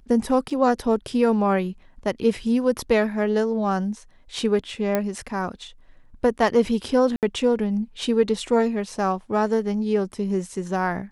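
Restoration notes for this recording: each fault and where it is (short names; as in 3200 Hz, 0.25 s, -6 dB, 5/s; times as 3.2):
0.5–0.51 gap 5.2 ms
4.95 pop -9 dBFS
7.16–7.23 gap 68 ms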